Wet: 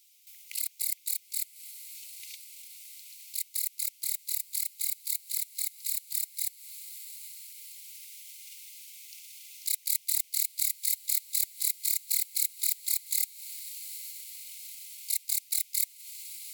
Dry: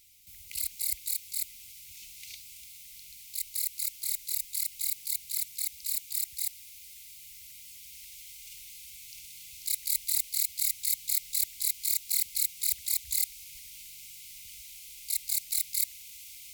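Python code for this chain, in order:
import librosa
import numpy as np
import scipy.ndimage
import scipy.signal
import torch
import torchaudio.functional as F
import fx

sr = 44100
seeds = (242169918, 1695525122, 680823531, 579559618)

y = fx.echo_diffused(x, sr, ms=868, feedback_pct=61, wet_db=-11)
y = fx.transient(y, sr, attack_db=4, sustain_db=-9)
y = fx.filter_sweep_highpass(y, sr, from_hz=2900.0, to_hz=300.0, start_s=0.04, end_s=1.21, q=0.86)
y = y * 10.0 ** (-2.0 / 20.0)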